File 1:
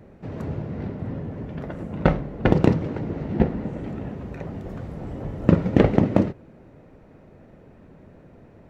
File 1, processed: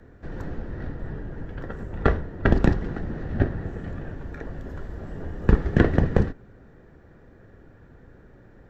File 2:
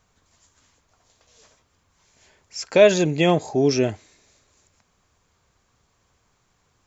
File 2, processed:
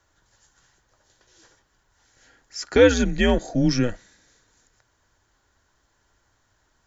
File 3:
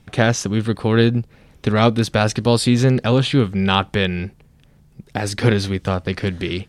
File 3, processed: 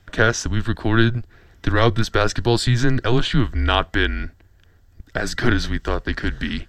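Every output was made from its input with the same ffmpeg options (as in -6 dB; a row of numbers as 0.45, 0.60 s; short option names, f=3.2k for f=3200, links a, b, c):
-af "superequalizer=11b=2:12b=0.708:16b=0.316,afreqshift=-120,volume=-1dB"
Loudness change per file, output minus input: -2.5, -1.5, -2.5 LU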